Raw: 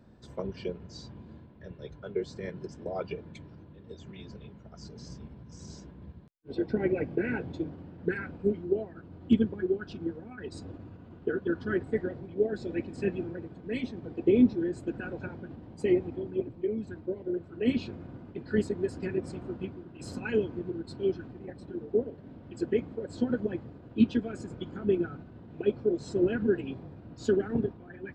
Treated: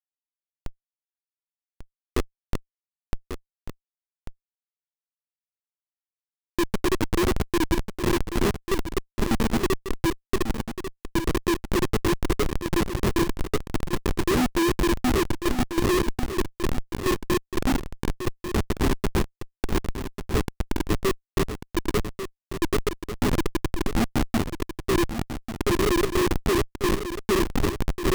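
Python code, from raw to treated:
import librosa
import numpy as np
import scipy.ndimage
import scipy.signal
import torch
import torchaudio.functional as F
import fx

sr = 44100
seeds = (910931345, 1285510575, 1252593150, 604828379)

p1 = fx.reverse_delay_fb(x, sr, ms=590, feedback_pct=48, wet_db=-2.5)
p2 = fx.small_body(p1, sr, hz=(320.0, 2000.0), ring_ms=45, db=17)
p3 = fx.schmitt(p2, sr, flips_db=-15.5)
y = p3 + fx.echo_single(p3, sr, ms=1143, db=-9.5, dry=0)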